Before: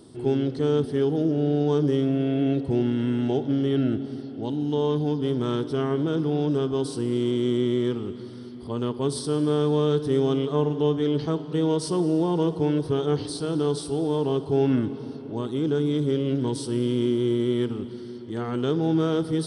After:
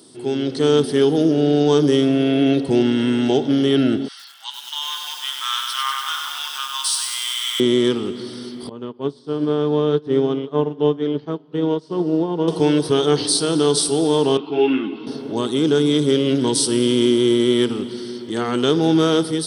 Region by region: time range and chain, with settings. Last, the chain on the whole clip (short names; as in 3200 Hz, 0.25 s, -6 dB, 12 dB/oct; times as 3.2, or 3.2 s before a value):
4.08–7.6 steep high-pass 1000 Hz 48 dB/oct + doubler 14 ms -7.5 dB + lo-fi delay 97 ms, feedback 80%, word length 9-bit, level -4 dB
8.69–12.48 tape spacing loss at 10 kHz 32 dB + upward expander 2.5:1, over -34 dBFS
14.37–15.07 speaker cabinet 270–3400 Hz, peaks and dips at 310 Hz +8 dB, 490 Hz -10 dB, 1700 Hz -5 dB, 2600 Hz +9 dB + notch 610 Hz, Q 6.9 + ensemble effect
whole clip: HPF 180 Hz 12 dB/oct; high shelf 2500 Hz +12 dB; AGC gain up to 8 dB